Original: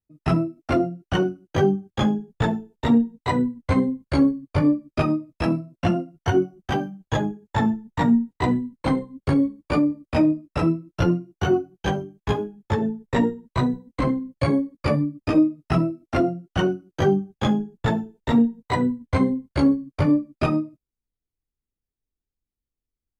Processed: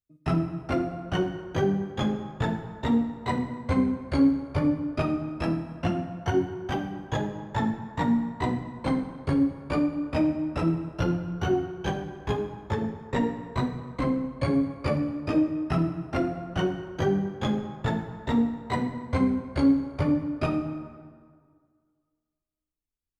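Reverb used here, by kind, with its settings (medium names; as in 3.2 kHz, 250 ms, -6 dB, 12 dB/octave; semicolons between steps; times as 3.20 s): plate-style reverb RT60 1.9 s, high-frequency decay 0.6×, DRR 6.5 dB; trim -5.5 dB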